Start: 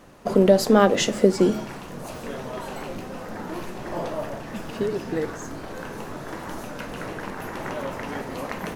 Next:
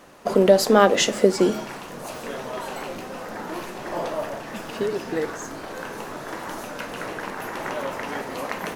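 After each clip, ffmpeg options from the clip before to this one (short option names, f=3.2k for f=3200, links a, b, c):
-af "lowshelf=f=220:g=-12,volume=3.5dB"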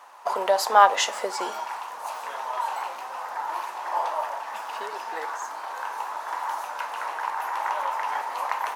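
-af "highpass=f=910:t=q:w=4.9,volume=-4dB"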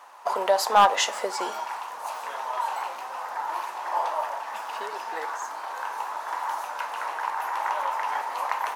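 -af "asoftclip=type=hard:threshold=-9dB"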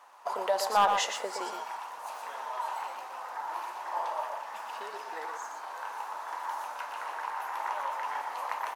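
-af "aecho=1:1:119:0.473,volume=-7dB"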